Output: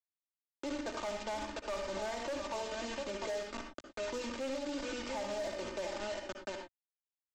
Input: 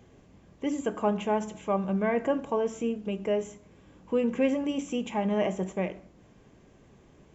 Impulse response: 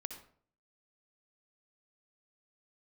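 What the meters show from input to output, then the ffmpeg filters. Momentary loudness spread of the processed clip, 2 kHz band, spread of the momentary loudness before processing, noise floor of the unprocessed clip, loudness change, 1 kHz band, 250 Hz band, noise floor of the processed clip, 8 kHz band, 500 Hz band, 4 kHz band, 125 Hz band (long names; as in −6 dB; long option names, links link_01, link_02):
6 LU, −3.0 dB, 6 LU, −58 dBFS, −10.0 dB, −7.5 dB, −14.0 dB, below −85 dBFS, can't be measured, −9.0 dB, +1.0 dB, −17.5 dB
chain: -filter_complex "[0:a]acrossover=split=390 2300:gain=0.141 1 0.0708[link_01][link_02][link_03];[link_01][link_02][link_03]amix=inputs=3:normalize=0,asplit=2[link_04][link_05];[link_05]acompressor=threshold=-40dB:ratio=16,volume=-1dB[link_06];[link_04][link_06]amix=inputs=2:normalize=0,asplit=2[link_07][link_08];[link_08]adelay=699.7,volume=-9dB,highshelf=frequency=4000:gain=-15.7[link_09];[link_07][link_09]amix=inputs=2:normalize=0,aresample=16000,acrusher=bits=5:mix=0:aa=0.000001,aresample=44100,aecho=1:1:3.3:0.74,asoftclip=type=hard:threshold=-23dB[link_10];[1:a]atrim=start_sample=2205,afade=type=out:start_time=0.17:duration=0.01,atrim=end_sample=7938[link_11];[link_10][link_11]afir=irnorm=-1:irlink=0,acrossover=split=130|3000[link_12][link_13][link_14];[link_13]acompressor=threshold=-44dB:ratio=1.5[link_15];[link_12][link_15][link_14]amix=inputs=3:normalize=0,alimiter=level_in=9.5dB:limit=-24dB:level=0:latency=1:release=108,volume=-9.5dB,highshelf=frequency=5100:gain=-7.5,volume=4dB"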